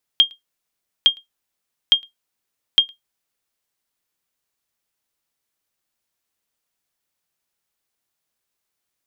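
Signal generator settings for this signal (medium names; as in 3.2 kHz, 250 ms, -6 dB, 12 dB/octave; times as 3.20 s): sonar ping 3.22 kHz, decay 0.14 s, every 0.86 s, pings 4, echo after 0.11 s, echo -30 dB -3.5 dBFS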